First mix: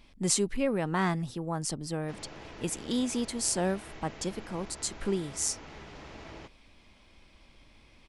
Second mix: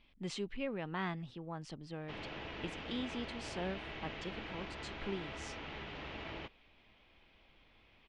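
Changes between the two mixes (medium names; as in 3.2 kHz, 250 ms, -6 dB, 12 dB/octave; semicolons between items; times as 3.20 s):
speech -11.0 dB; master: add resonant low-pass 3.1 kHz, resonance Q 2.1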